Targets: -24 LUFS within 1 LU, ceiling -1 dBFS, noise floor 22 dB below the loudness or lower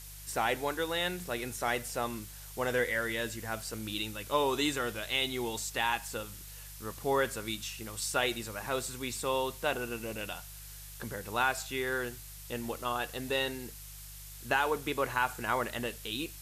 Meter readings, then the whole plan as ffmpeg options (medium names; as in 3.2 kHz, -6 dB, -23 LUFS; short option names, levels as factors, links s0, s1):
hum 50 Hz; highest harmonic 150 Hz; hum level -48 dBFS; noise floor -47 dBFS; noise floor target -56 dBFS; loudness -33.5 LUFS; peak level -15.0 dBFS; loudness target -24.0 LUFS
-> -af "bandreject=f=50:t=h:w=4,bandreject=f=100:t=h:w=4,bandreject=f=150:t=h:w=4"
-af "afftdn=nr=9:nf=-47"
-af "volume=2.99"